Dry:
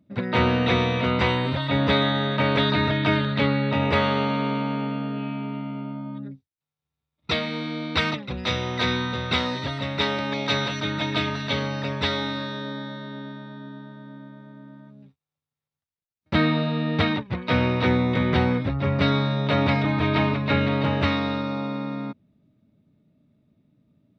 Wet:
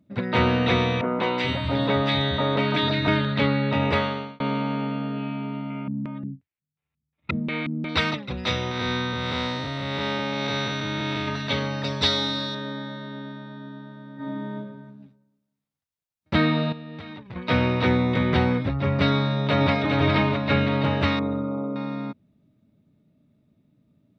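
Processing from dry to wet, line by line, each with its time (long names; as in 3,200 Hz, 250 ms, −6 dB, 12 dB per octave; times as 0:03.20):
0:01.01–0:03.08: three-band delay without the direct sound mids, highs, lows 190/430 ms, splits 170/1,600 Hz
0:03.88–0:04.40: fade out
0:05.70–0:07.89: auto-filter low-pass square 2.8 Hz 210–2,400 Hz
0:08.71–0:11.28: spectrum smeared in time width 247 ms
0:11.84–0:12.55: high shelf with overshoot 3,300 Hz +7.5 dB, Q 1.5
0:14.15–0:14.55: thrown reverb, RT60 1.1 s, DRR −11 dB
0:16.72–0:17.36: downward compressor 20 to 1, threshold −34 dBFS
0:19.19–0:19.81: delay throw 410 ms, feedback 40%, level −4 dB
0:21.19–0:21.76: spectral envelope exaggerated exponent 2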